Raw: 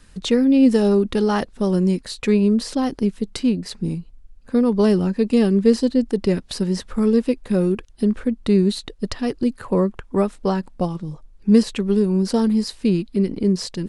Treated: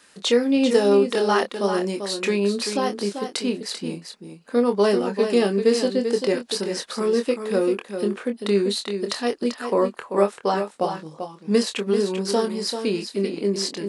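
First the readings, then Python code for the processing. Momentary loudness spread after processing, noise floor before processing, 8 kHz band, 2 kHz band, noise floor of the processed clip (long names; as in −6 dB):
8 LU, −47 dBFS, +4.0 dB, +4.0 dB, −50 dBFS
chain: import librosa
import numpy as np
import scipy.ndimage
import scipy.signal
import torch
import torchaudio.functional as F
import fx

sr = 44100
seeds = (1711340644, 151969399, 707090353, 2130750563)

y = scipy.signal.sosfilt(scipy.signal.butter(2, 430.0, 'highpass', fs=sr, output='sos'), x)
y = fx.doubler(y, sr, ms=25.0, db=-7.0)
y = y + 10.0 ** (-8.0 / 20.0) * np.pad(y, (int(390 * sr / 1000.0), 0))[:len(y)]
y = F.gain(torch.from_numpy(y), 2.5).numpy()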